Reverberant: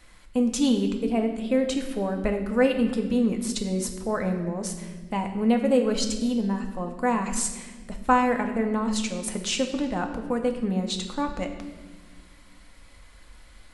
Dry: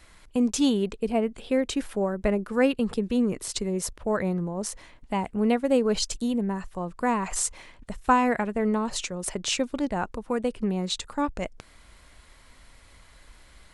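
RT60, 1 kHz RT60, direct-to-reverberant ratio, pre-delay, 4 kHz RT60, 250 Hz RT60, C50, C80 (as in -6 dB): 1.4 s, 1.1 s, 3.5 dB, 4 ms, 1.2 s, 2.5 s, 8.0 dB, 9.5 dB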